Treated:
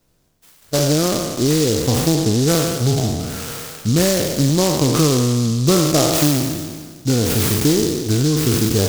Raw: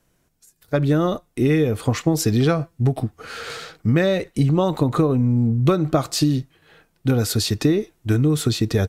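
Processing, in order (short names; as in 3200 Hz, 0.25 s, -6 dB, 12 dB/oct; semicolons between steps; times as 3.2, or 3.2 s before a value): spectral trails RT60 1.64 s; 2.15–2.55 steep low-pass 2000 Hz 72 dB/oct; noise-modulated delay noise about 5200 Hz, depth 0.14 ms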